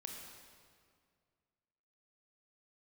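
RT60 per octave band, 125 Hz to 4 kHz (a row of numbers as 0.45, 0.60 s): 2.5, 2.3, 2.2, 2.0, 1.8, 1.6 s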